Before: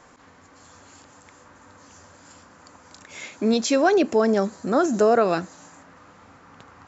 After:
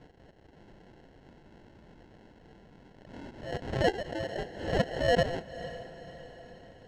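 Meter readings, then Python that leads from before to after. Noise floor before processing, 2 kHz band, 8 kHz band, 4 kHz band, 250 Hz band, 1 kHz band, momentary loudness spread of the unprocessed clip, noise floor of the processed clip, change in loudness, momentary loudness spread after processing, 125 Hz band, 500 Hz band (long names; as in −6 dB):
−52 dBFS, −5.5 dB, can't be measured, −5.0 dB, −14.5 dB, −11.0 dB, 9 LU, −58 dBFS, −11.0 dB, 21 LU, +0.5 dB, −10.0 dB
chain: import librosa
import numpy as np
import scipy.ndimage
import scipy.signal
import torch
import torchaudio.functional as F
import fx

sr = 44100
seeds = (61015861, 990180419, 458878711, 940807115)

y = scipy.signal.sosfilt(scipy.signal.ellip(4, 1.0, 40, 670.0, 'highpass', fs=sr, output='sos'), x)
y = fx.env_lowpass_down(y, sr, base_hz=2400.0, full_db=-25.0)
y = fx.level_steps(y, sr, step_db=11)
y = fx.sample_hold(y, sr, seeds[0], rate_hz=1200.0, jitter_pct=0)
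y = fx.air_absorb(y, sr, metres=130.0)
y = fx.echo_diffused(y, sr, ms=515, feedback_pct=50, wet_db=-14)
y = fx.pre_swell(y, sr, db_per_s=84.0)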